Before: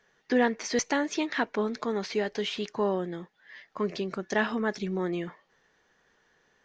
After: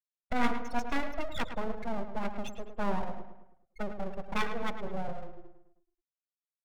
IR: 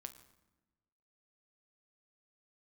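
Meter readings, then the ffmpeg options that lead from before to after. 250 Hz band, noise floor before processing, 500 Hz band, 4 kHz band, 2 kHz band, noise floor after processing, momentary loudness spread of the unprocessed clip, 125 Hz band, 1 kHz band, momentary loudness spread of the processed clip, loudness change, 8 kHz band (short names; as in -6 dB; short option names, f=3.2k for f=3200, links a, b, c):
-7.0 dB, -69 dBFS, -9.5 dB, -8.5 dB, -6.5 dB, under -85 dBFS, 9 LU, -4.0 dB, -1.5 dB, 10 LU, -6.5 dB, n/a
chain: -filter_complex "[1:a]atrim=start_sample=2205,afade=t=out:st=0.36:d=0.01,atrim=end_sample=16317,asetrate=26901,aresample=44100[a];[0:a][a]afir=irnorm=-1:irlink=0,afftfilt=real='re*gte(hypot(re,im),0.0794)':imag='im*gte(hypot(re,im),0.0794)':win_size=1024:overlap=0.75,acrossover=split=3300[b][c];[c]acompressor=threshold=-53dB:ratio=4:attack=1:release=60[d];[b][d]amix=inputs=2:normalize=0,aeval=exprs='abs(val(0))':c=same,asplit=2[e][f];[f]adelay=107,lowpass=f=3.4k:p=1,volume=-9dB,asplit=2[g][h];[h]adelay=107,lowpass=f=3.4k:p=1,volume=0.48,asplit=2[i][j];[j]adelay=107,lowpass=f=3.4k:p=1,volume=0.48,asplit=2[k][l];[l]adelay=107,lowpass=f=3.4k:p=1,volume=0.48,asplit=2[m][n];[n]adelay=107,lowpass=f=3.4k:p=1,volume=0.48[o];[e][g][i][k][m][o]amix=inputs=6:normalize=0,volume=1dB"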